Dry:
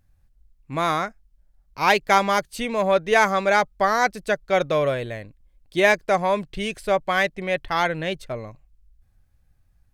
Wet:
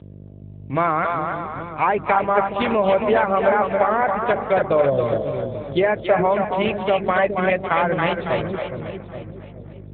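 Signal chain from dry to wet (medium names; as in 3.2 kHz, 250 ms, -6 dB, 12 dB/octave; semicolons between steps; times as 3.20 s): time-frequency box 4.86–5.23 s, 1.1–3.1 kHz -25 dB; low-pass that closes with the level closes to 1.4 kHz, closed at -16.5 dBFS; hum notches 50/100/150/200/250/300/350 Hz; compression 12:1, threshold -21 dBFS, peak gain reduction 9 dB; mains buzz 50 Hz, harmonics 13, -40 dBFS -8 dB/octave; two-band feedback delay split 470 Hz, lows 418 ms, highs 276 ms, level -4 dB; trim +7 dB; AMR-NB 7.95 kbps 8 kHz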